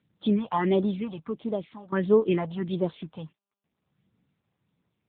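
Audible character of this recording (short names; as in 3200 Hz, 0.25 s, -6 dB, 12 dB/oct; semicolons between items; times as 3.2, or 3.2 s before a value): tremolo saw down 0.52 Hz, depth 85%; phasing stages 4, 1.5 Hz, lowest notch 320–2600 Hz; AMR-NB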